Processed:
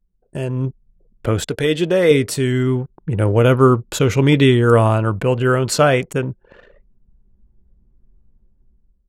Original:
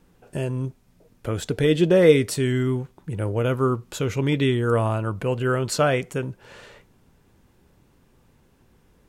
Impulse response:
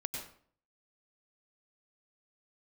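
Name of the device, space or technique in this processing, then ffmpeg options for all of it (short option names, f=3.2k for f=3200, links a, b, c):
voice memo with heavy noise removal: -filter_complex "[0:a]asettb=1/sr,asplit=3[a][b][c];[a]atrim=end=1.454[d];[b]atrim=start=1.45:end=2.11,asetpts=PTS-STARTPTS,afade=t=in:d=0.004:c=qsin,afade=t=out:st=0.656:d=0.004:c=qsin,lowshelf=f=420:g=-7.5[e];[c]atrim=start=2.106[f];[d][e]acrossfade=d=0.004:c1=hsin:c2=qsin[g];[g][f]acrossfade=d=0.004:c1=qsin:c2=hsin,anlmdn=0.398,dynaudnorm=f=280:g=5:m=15.5dB,volume=-1dB"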